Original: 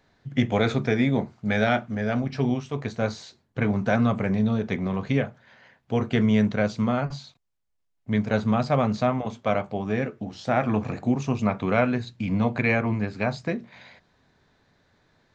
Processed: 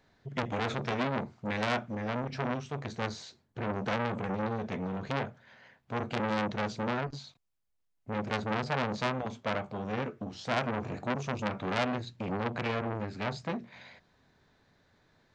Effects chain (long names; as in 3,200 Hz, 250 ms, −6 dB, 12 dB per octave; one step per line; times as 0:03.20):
saturating transformer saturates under 2,200 Hz
level −3 dB